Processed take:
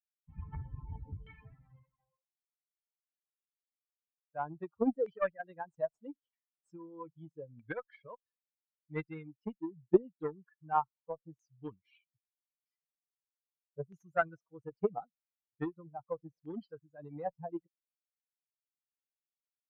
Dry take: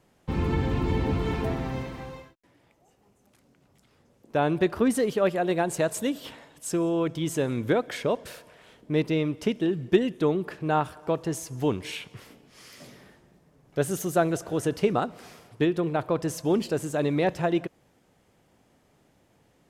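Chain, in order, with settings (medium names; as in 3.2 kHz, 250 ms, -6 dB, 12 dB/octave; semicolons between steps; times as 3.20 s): expander on every frequency bin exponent 3; Chebyshev shaper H 2 -38 dB, 7 -22 dB, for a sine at -10.5 dBFS; LFO low-pass saw down 0.79 Hz 540–2100 Hz; trim -4 dB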